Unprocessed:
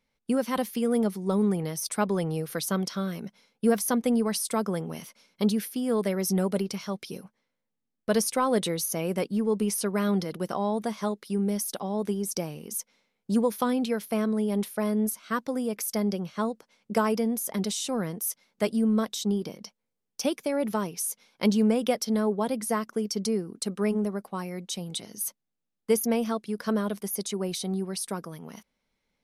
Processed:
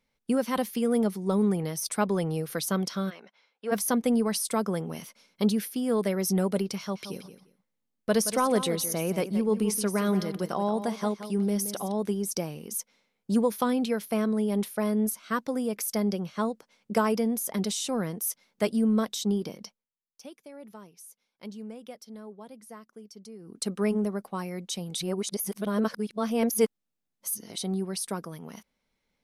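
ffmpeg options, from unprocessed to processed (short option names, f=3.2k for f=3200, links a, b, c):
-filter_complex "[0:a]asplit=3[a][b][c];[a]afade=t=out:st=3.09:d=0.02[d];[b]highpass=660,lowpass=3.5k,afade=t=in:st=3.09:d=0.02,afade=t=out:st=3.71:d=0.02[e];[c]afade=t=in:st=3.71:d=0.02[f];[d][e][f]amix=inputs=3:normalize=0,asettb=1/sr,asplit=3[g][h][i];[g]atrim=end=6.784[j];[h]atrim=start=6.78:end=11.92,asetpts=PTS-STARTPTS,afade=t=in:d=0.004:c=qsin,afade=t=out:st=5.136:d=0.004:c=qsin,aecho=1:1:174|348:0.266|0.0506,atrim=end_sample=226674[k];[i]atrim=start=11.916[l];[j][k]acrossfade=d=0.004:c1=hsin:c2=qsin[m];[m][l]acrossfade=d=0.004:c1=qsin:c2=hsin,asplit=5[n][o][p][q][r];[n]atrim=end=19.86,asetpts=PTS-STARTPTS,afade=t=out:st=19.64:d=0.22:silence=0.125893[s];[o]atrim=start=19.86:end=23.39,asetpts=PTS-STARTPTS,volume=-18dB[t];[p]atrim=start=23.39:end=24.972,asetpts=PTS-STARTPTS,afade=t=in:d=0.22:silence=0.125893[u];[q]atrim=start=24.968:end=27.582,asetpts=PTS-STARTPTS,areverse[v];[r]atrim=start=27.578[w];[s][t][u]concat=n=3:v=0:a=1[x];[x][v]acrossfade=d=0.004:c1=hsin:c2=hsin[y];[y][w]acrossfade=d=0.004:c1=hsin:c2=hsin"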